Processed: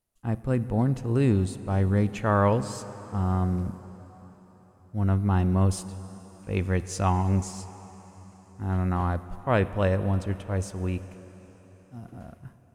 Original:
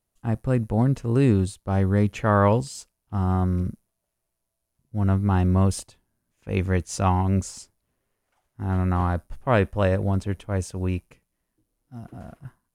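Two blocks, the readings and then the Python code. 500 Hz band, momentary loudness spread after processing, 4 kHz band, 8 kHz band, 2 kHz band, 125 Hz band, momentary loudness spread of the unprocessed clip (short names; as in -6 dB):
-3.0 dB, 20 LU, -3.0 dB, -3.0 dB, -3.0 dB, -2.5 dB, 15 LU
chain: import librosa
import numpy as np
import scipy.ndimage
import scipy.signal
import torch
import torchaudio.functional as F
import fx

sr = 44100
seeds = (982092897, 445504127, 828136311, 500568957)

y = fx.rev_plate(x, sr, seeds[0], rt60_s=4.8, hf_ratio=0.95, predelay_ms=0, drr_db=13.0)
y = F.gain(torch.from_numpy(y), -3.0).numpy()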